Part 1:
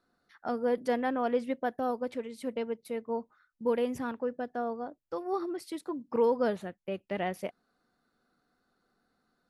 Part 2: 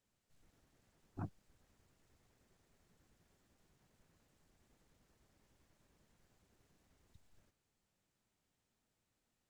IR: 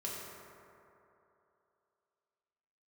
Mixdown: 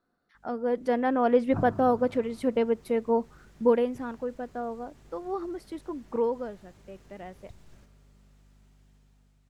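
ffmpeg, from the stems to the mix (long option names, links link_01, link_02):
-filter_complex "[0:a]highshelf=frequency=2600:gain=-8.5,volume=-1dB,afade=type=out:start_time=3.62:duration=0.3:silence=0.354813,afade=type=out:start_time=6.22:duration=0.26:silence=0.334965,asplit=2[link_01][link_02];[1:a]highshelf=frequency=9200:gain=-7.5,aeval=exprs='val(0)+0.000251*(sin(2*PI*50*n/s)+sin(2*PI*2*50*n/s)/2+sin(2*PI*3*50*n/s)/3+sin(2*PI*4*50*n/s)/4+sin(2*PI*5*50*n/s)/5)':channel_layout=same,adelay=350,volume=2.5dB,asplit=2[link_03][link_04];[link_04]volume=-4.5dB[link_05];[link_02]apad=whole_len=434382[link_06];[link_03][link_06]sidechaincompress=threshold=-38dB:ratio=8:attack=11:release=124[link_07];[2:a]atrim=start_sample=2205[link_08];[link_05][link_08]afir=irnorm=-1:irlink=0[link_09];[link_01][link_07][link_09]amix=inputs=3:normalize=0,dynaudnorm=framelen=310:gausssize=7:maxgain=10dB"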